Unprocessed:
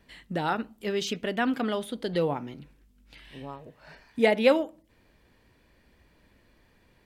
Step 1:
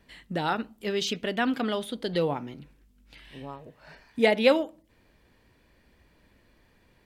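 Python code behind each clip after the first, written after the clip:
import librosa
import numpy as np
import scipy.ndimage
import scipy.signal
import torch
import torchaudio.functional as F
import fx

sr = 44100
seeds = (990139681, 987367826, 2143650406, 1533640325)

y = fx.dynamic_eq(x, sr, hz=3900.0, q=1.2, threshold_db=-47.0, ratio=4.0, max_db=4)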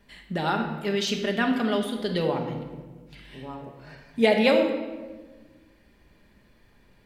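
y = fx.room_shoebox(x, sr, seeds[0], volume_m3=1100.0, walls='mixed', distance_m=1.3)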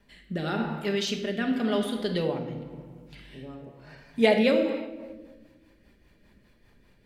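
y = fx.rotary_switch(x, sr, hz=0.9, then_hz=5.0, switch_at_s=4.31)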